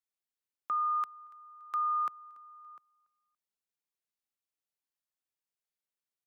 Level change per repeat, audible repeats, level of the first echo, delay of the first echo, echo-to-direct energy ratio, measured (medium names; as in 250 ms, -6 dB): -9.0 dB, 2, -23.0 dB, 285 ms, -22.5 dB